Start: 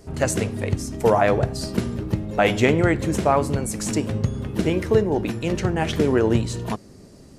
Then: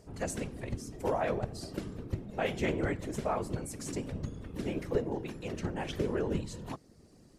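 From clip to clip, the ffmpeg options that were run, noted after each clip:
ffmpeg -i in.wav -af "afftfilt=real='hypot(re,im)*cos(2*PI*random(0))':imag='hypot(re,im)*sin(2*PI*random(1))':win_size=512:overlap=0.75,acompressor=mode=upward:threshold=-47dB:ratio=2.5,volume=-7.5dB" out.wav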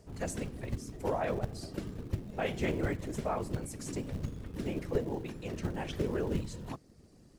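ffmpeg -i in.wav -filter_complex "[0:a]lowshelf=frequency=170:gain=4,acrossover=split=270[link_01][link_02];[link_01]acrusher=bits=5:mode=log:mix=0:aa=0.000001[link_03];[link_03][link_02]amix=inputs=2:normalize=0,volume=-2dB" out.wav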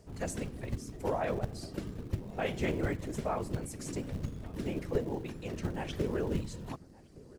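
ffmpeg -i in.wav -filter_complex "[0:a]asplit=2[link_01][link_02];[link_02]adelay=1166,volume=-21dB,highshelf=frequency=4000:gain=-26.2[link_03];[link_01][link_03]amix=inputs=2:normalize=0" out.wav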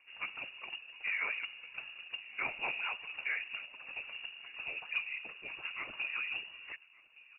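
ffmpeg -i in.wav -af "lowshelf=frequency=370:gain=-10.5,lowpass=frequency=2500:width_type=q:width=0.5098,lowpass=frequency=2500:width_type=q:width=0.6013,lowpass=frequency=2500:width_type=q:width=0.9,lowpass=frequency=2500:width_type=q:width=2.563,afreqshift=-2900" out.wav

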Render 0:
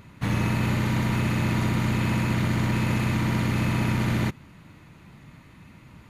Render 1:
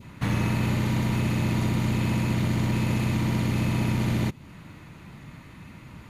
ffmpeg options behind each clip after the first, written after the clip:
ffmpeg -i in.wav -filter_complex "[0:a]adynamicequalizer=threshold=0.00447:dfrequency=1500:dqfactor=1.2:tfrequency=1500:tqfactor=1.2:attack=5:release=100:ratio=0.375:range=3:mode=cutabove:tftype=bell,asplit=2[link_01][link_02];[link_02]acompressor=threshold=-33dB:ratio=6,volume=2dB[link_03];[link_01][link_03]amix=inputs=2:normalize=0,volume=-3dB" out.wav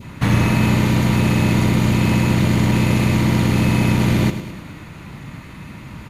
ffmpeg -i in.wav -af "aecho=1:1:104|208|312|416|520|624:0.282|0.161|0.0916|0.0522|0.0298|0.017,volume=9dB" out.wav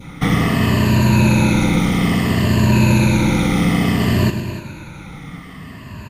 ffmpeg -i in.wav -af "afftfilt=real='re*pow(10,13/40*sin(2*PI*(1.4*log(max(b,1)*sr/1024/100)/log(2)-(-0.59)*(pts-256)/sr)))':imag='im*pow(10,13/40*sin(2*PI*(1.4*log(max(b,1)*sr/1024/100)/log(2)-(-0.59)*(pts-256)/sr)))':win_size=1024:overlap=0.75,aecho=1:1:291:0.211" out.wav

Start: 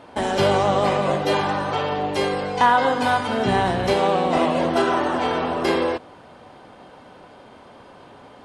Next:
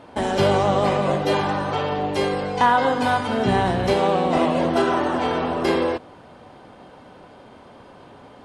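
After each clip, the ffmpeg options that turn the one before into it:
ffmpeg -i in.wav -af "lowshelf=frequency=410:gain=4,volume=-1.5dB" out.wav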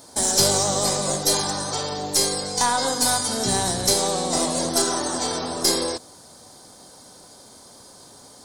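ffmpeg -i in.wav -af "aexciter=amount=13.9:drive=8.7:freq=4400,aeval=exprs='1.19*(cos(1*acos(clip(val(0)/1.19,-1,1)))-cos(1*PI/2))+0.266*(cos(2*acos(clip(val(0)/1.19,-1,1)))-cos(2*PI/2))':channel_layout=same,volume=-5.5dB" out.wav

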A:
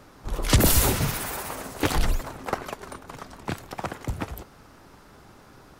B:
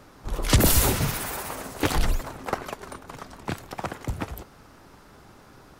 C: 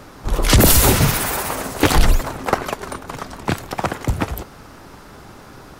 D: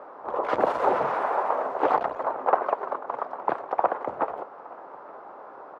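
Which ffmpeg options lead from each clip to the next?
ffmpeg -i in.wav -af anull out.wav
ffmpeg -i in.wav -af "alimiter=level_in=11dB:limit=-1dB:release=50:level=0:latency=1,volume=-1dB" out.wav
ffmpeg -i in.wav -filter_complex "[0:a]asplit=2[link_01][link_02];[link_02]aeval=exprs='0.841*sin(PI/2*2.82*val(0)/0.841)':channel_layout=same,volume=-10dB[link_03];[link_01][link_03]amix=inputs=2:normalize=0,asuperpass=centerf=750:order=4:qfactor=1.1,aecho=1:1:870:0.075,volume=-4.5dB" out.wav

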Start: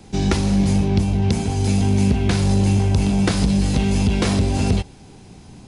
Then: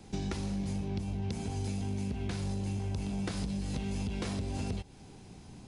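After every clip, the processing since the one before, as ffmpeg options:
ffmpeg -i in.wav -af "acompressor=threshold=-24dB:ratio=6,volume=-8dB" out.wav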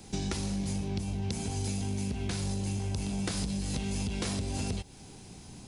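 ffmpeg -i in.wav -af "highshelf=frequency=4400:gain=10.5,volume=1.5dB" out.wav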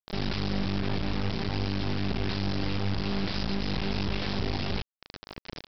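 ffmpeg -i in.wav -af "alimiter=level_in=3dB:limit=-24dB:level=0:latency=1:release=37,volume=-3dB,aresample=11025,acrusher=bits=4:dc=4:mix=0:aa=0.000001,aresample=44100,volume=9dB" out.wav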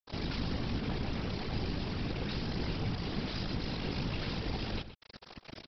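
ffmpeg -i in.wav -filter_complex "[0:a]afftfilt=real='hypot(re,im)*cos(2*PI*random(0))':imag='hypot(re,im)*sin(2*PI*random(1))':win_size=512:overlap=0.75,asplit=2[link_01][link_02];[link_02]adelay=122.4,volume=-12dB,highshelf=frequency=4000:gain=-2.76[link_03];[link_01][link_03]amix=inputs=2:normalize=0" out.wav

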